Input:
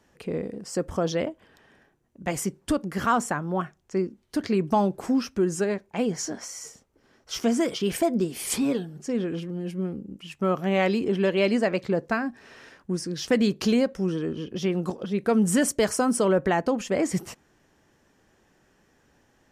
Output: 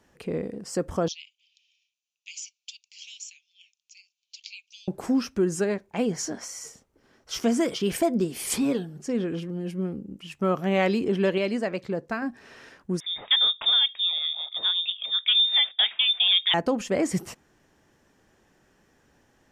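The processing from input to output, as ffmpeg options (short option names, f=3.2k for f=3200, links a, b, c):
-filter_complex "[0:a]asettb=1/sr,asplit=3[a][b][c];[a]atrim=end=1.084[d];[b]atrim=start=1.08:end=4.88,asetpts=PTS-STARTPTS,afade=t=in:d=0.004:c=qsin,afade=t=out:st=3.796:d=0.004:c=qsin,asuperpass=centerf=4200:order=20:qfactor=0.88[e];[c]atrim=start=4.876[f];[d][e]acrossfade=d=0.004:c1=hsin:c2=qsin[g];[g][f]acrossfade=d=0.004:c1=qsin:c2=hsin,asettb=1/sr,asplit=3[h][i][j];[h]atrim=end=13.004[k];[i]atrim=start=13:end=16.54,asetpts=PTS-STARTPTS,afade=t=in:d=0.004:c=qsin,afade=t=out:st=3.536:d=0.004:c=qsin,lowpass=f=3.2k:t=q:w=0.5098,lowpass=f=3.2k:t=q:w=0.6013,lowpass=f=3.2k:t=q:w=0.9,lowpass=f=3.2k:t=q:w=2.563,afreqshift=-3800[l];[j]atrim=start=16.536[m];[k][l]acrossfade=d=0.004:c1=hsin:c2=qsin[n];[n][m]acrossfade=d=0.004:c1=qsin:c2=hsin,asplit=3[o][p][q];[o]atrim=end=11.382[r];[p]atrim=start=11.378:end=12.222,asetpts=PTS-STARTPTS,volume=-4.5dB[s];[q]atrim=start=12.218[t];[r][s]acrossfade=d=0.004:c1=hsin:c2=hsin[u];[u][t]acrossfade=d=0.004:c1=hsin:c2=hsin"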